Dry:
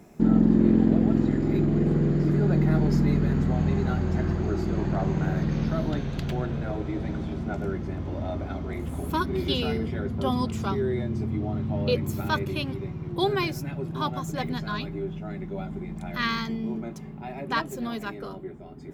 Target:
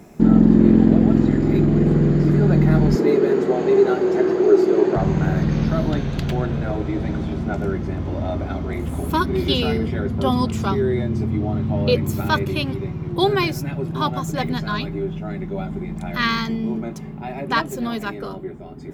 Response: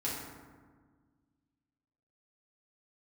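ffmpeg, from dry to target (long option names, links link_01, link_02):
-filter_complex "[0:a]asettb=1/sr,asplit=3[link_01][link_02][link_03];[link_01]atrim=end=2.954[link_04];[link_02]atrim=start=2.95:end=4.96,asetpts=PTS-STARTPTS,afade=type=in:duration=0.004:curve=qsin,afade=type=out:start_time=2.006:duration=0.004:curve=qsin,highpass=frequency=400:width_type=q:width=4.9[link_05];[link_03]atrim=start=4.956[link_06];[link_04][link_05]acrossfade=duration=0.004:curve1=hsin:curve2=qsin[link_07];[link_07][link_06]acrossfade=duration=0.004:curve1=qsin:curve2=hsin,volume=6.5dB"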